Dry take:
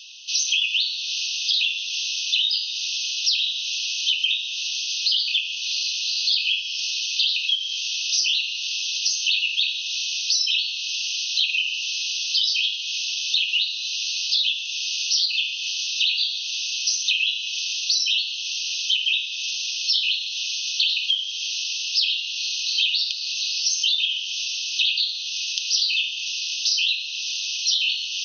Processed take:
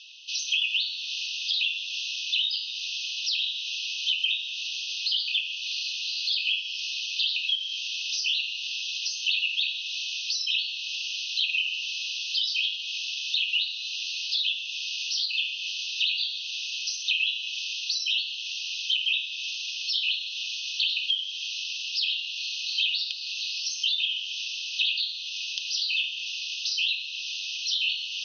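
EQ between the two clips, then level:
high-frequency loss of the air 77 metres
high-shelf EQ 5,200 Hz −10 dB
0.0 dB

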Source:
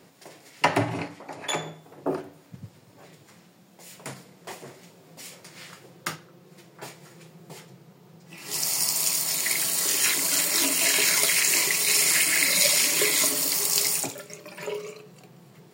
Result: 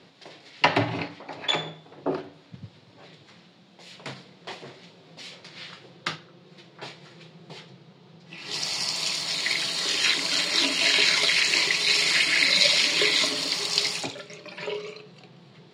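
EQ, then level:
low-pass with resonance 3,900 Hz, resonance Q 2.5
0.0 dB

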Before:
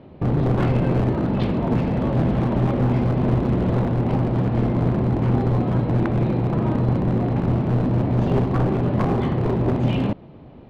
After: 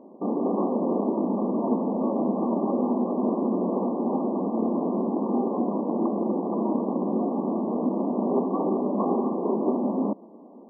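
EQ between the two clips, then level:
linear-phase brick-wall band-pass 190–1,200 Hz
−1.0 dB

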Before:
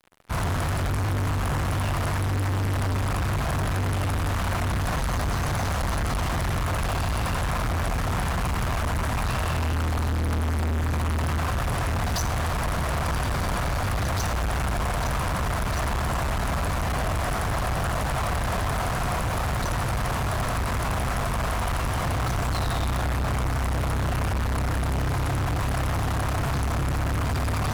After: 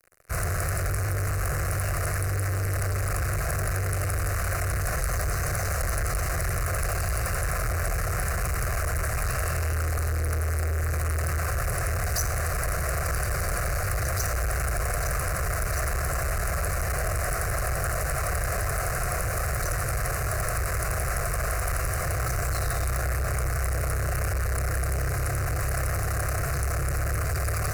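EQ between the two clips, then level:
high-shelf EQ 4,100 Hz +8.5 dB
phaser with its sweep stopped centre 910 Hz, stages 6
0.0 dB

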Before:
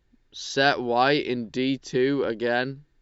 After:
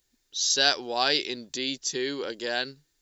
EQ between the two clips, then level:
bass and treble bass −8 dB, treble +14 dB
high-shelf EQ 3,000 Hz +10 dB
−7.0 dB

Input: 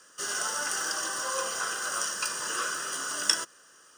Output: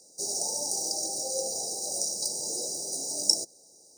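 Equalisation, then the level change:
linear-phase brick-wall band-stop 880–3,800 Hz
notch filter 4,300 Hz, Q 13
+2.5 dB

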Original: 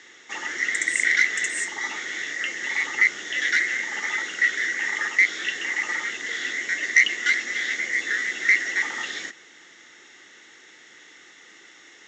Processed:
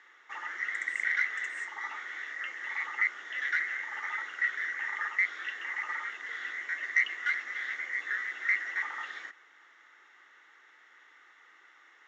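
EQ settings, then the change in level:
resonant band-pass 1,200 Hz, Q 2.1
−1.5 dB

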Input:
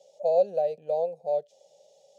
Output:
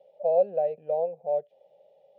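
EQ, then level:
low-pass filter 2,500 Hz 24 dB per octave
0.0 dB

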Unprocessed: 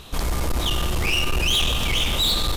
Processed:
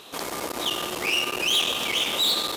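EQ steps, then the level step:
Chebyshev high-pass filter 350 Hz, order 2
0.0 dB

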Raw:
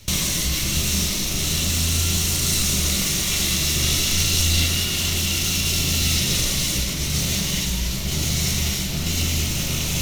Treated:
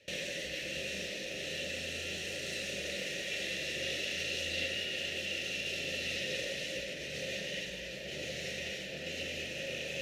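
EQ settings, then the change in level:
formant filter e
+3.0 dB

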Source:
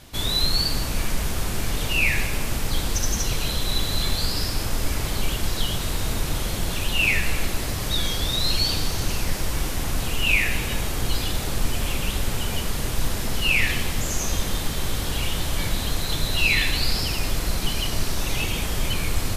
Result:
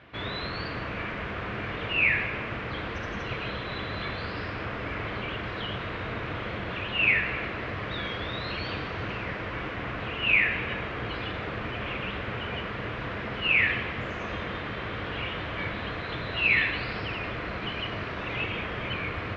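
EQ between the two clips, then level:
loudspeaker in its box 150–2,400 Hz, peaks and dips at 160 Hz −10 dB, 250 Hz −9 dB, 370 Hz −5 dB, 580 Hz −3 dB, 840 Hz −8 dB
+2.5 dB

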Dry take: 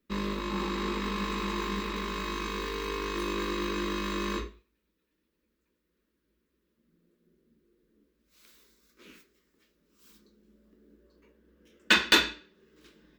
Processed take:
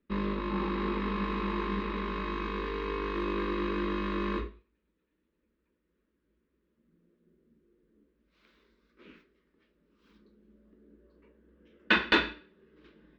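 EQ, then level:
high-frequency loss of the air 350 metres
+1.5 dB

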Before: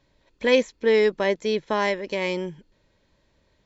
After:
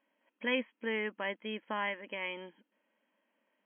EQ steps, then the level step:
parametric band 390 Hz −10.5 dB 0.58 octaves
dynamic equaliser 580 Hz, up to −6 dB, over −36 dBFS, Q 1.3
linear-phase brick-wall band-pass 200–3,300 Hz
−7.5 dB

